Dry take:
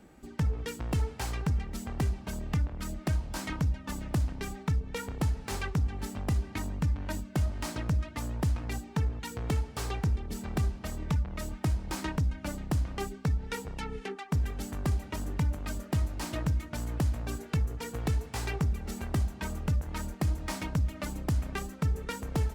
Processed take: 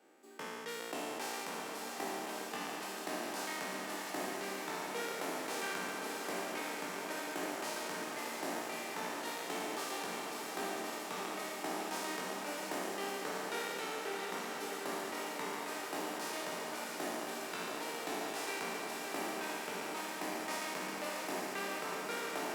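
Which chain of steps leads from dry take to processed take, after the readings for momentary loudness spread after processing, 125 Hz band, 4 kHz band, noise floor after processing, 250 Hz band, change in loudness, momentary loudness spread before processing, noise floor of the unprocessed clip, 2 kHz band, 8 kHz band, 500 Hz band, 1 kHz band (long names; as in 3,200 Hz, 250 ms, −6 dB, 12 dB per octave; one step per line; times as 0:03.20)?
2 LU, −29.0 dB, +2.0 dB, −43 dBFS, −8.5 dB, −6.5 dB, 5 LU, −48 dBFS, +2.5 dB, +1.0 dB, +1.0 dB, +2.5 dB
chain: peak hold with a decay on every bin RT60 2.81 s
high-pass filter 340 Hz 24 dB per octave
feedback delay with all-pass diffusion 658 ms, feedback 77%, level −5.5 dB
level −8 dB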